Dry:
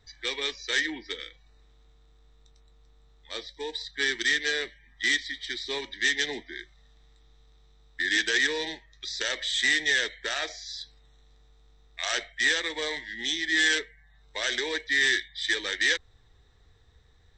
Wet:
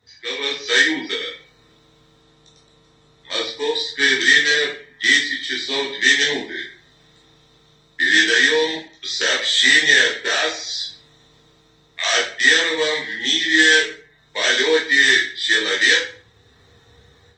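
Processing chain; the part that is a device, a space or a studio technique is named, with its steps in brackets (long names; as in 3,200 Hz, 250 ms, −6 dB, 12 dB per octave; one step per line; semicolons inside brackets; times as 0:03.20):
far-field microphone of a smart speaker (convolution reverb RT60 0.45 s, pre-delay 12 ms, DRR −4 dB; high-pass filter 100 Hz 24 dB per octave; automatic gain control gain up to 9 dB; Opus 24 kbit/s 48,000 Hz)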